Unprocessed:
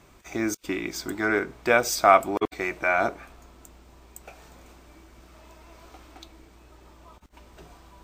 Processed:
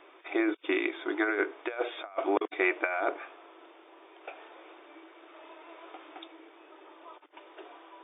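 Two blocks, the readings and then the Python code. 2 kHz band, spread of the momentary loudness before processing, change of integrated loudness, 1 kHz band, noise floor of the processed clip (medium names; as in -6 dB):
-5.0 dB, 12 LU, -6.5 dB, -11.0 dB, -56 dBFS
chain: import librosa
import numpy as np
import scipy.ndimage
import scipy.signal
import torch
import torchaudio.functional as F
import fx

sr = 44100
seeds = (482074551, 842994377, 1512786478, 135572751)

y = fx.over_compress(x, sr, threshold_db=-26.0, ratio=-0.5)
y = fx.brickwall_bandpass(y, sr, low_hz=290.0, high_hz=3700.0)
y = F.gain(torch.from_numpy(y), -1.0).numpy()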